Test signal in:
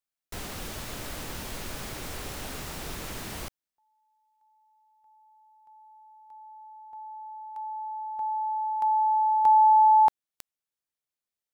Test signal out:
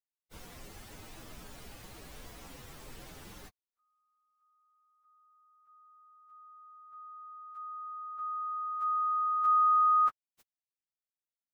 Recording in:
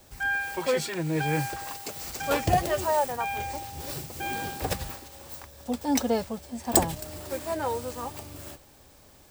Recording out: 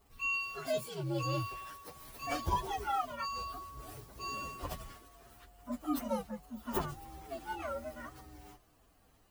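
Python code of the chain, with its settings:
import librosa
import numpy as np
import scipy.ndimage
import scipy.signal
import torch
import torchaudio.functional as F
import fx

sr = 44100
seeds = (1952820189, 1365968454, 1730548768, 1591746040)

y = fx.partial_stretch(x, sr, pct=129)
y = y * librosa.db_to_amplitude(-6.5)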